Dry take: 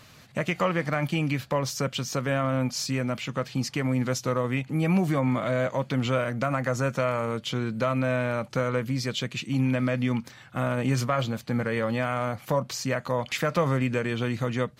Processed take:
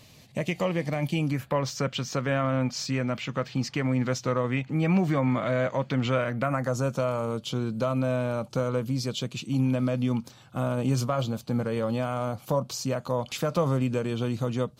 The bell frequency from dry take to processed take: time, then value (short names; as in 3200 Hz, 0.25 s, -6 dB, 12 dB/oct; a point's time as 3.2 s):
bell -14.5 dB 0.69 oct
1.18 s 1400 Hz
1.63 s 11000 Hz
6.26 s 11000 Hz
6.72 s 1900 Hz